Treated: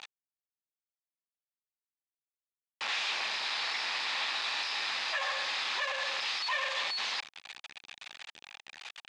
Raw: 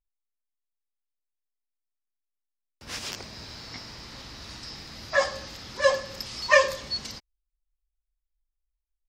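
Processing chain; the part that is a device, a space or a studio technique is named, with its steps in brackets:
home computer beeper (sign of each sample alone; loudspeaker in its box 780–5,700 Hz, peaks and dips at 810 Hz +6 dB, 1,800 Hz +5 dB, 2,500 Hz +8 dB, 3,600 Hz +6 dB, 5,500 Hz −5 dB)
dynamic equaliser 1,100 Hz, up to +4 dB, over −52 dBFS, Q 4.3
level −2 dB

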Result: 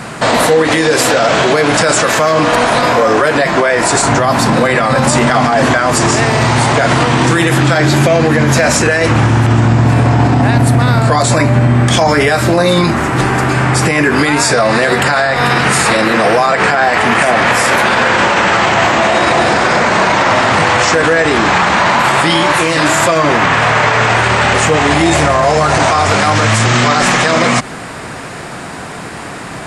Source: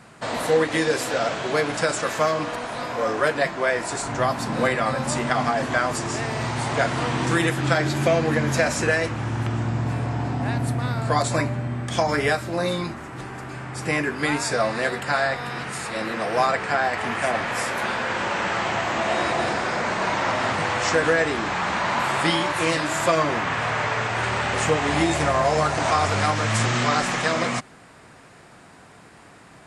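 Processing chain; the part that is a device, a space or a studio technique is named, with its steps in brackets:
mains-hum notches 50/100 Hz
loud club master (downward compressor 2 to 1, threshold −26 dBFS, peak gain reduction 6.5 dB; hard clipping −14.5 dBFS, distortion −39 dB; boost into a limiter +23.5 dB)
level −1 dB

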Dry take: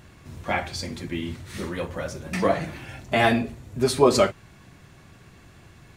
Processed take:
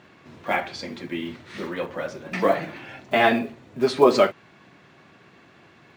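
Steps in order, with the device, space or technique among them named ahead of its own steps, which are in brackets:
early digital voice recorder (band-pass filter 230–3,800 Hz; one scale factor per block 7 bits)
level +2 dB

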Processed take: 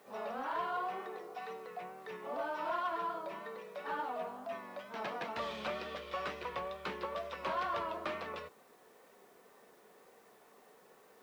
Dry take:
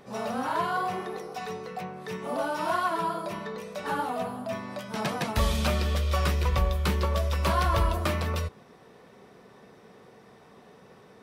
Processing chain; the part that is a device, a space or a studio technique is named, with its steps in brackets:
tape answering machine (band-pass filter 360–3,000 Hz; soft clipping −20 dBFS, distortion −21 dB; tape wow and flutter; white noise bed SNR 30 dB)
level −7 dB

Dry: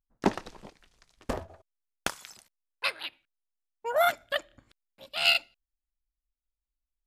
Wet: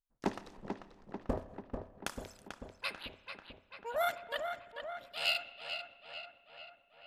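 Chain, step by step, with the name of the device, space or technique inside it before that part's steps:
0:00.57–0:01.38: tilt shelving filter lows +9 dB, about 1,300 Hz
dub delay into a spring reverb (feedback echo with a low-pass in the loop 441 ms, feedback 65%, low-pass 3,500 Hz, level −6.5 dB; spring reverb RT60 1.3 s, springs 30/52 ms, chirp 65 ms, DRR 14.5 dB)
level −9 dB

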